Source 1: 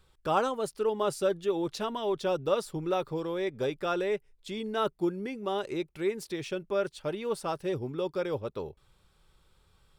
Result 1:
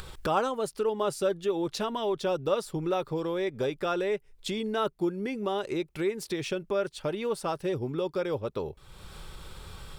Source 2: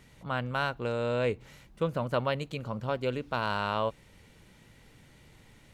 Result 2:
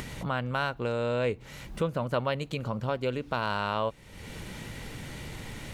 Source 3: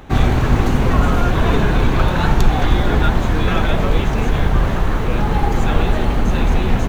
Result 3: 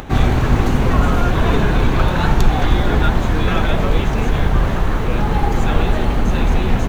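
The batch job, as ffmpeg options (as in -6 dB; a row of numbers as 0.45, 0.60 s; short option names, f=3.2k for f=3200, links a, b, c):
-af "acompressor=mode=upward:threshold=-25dB:ratio=2.5"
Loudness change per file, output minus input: +1.0, 0.0, 0.0 LU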